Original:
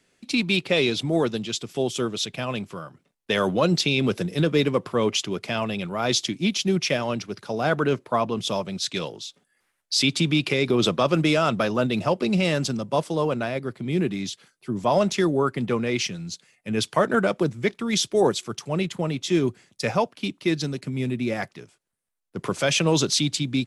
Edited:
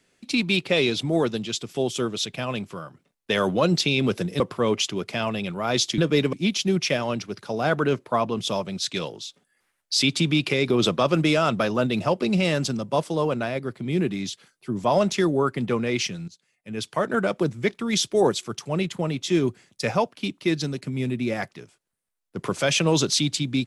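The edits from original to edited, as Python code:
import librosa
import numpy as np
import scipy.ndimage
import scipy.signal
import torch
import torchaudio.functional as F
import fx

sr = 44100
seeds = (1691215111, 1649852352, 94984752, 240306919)

y = fx.edit(x, sr, fx.move(start_s=4.4, length_s=0.35, to_s=6.33),
    fx.fade_in_from(start_s=16.28, length_s=1.23, floor_db=-17.5), tone=tone)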